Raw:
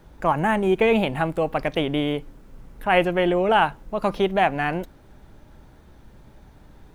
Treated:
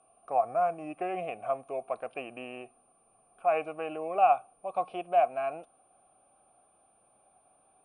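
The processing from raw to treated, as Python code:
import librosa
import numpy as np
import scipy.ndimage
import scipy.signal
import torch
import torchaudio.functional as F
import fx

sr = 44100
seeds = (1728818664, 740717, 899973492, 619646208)

y = fx.speed_glide(x, sr, from_pct=79, to_pct=98)
y = y + 10.0 ** (-35.0 / 20.0) * np.sin(2.0 * np.pi * 9200.0 * np.arange(len(y)) / sr)
y = fx.vowel_filter(y, sr, vowel='a')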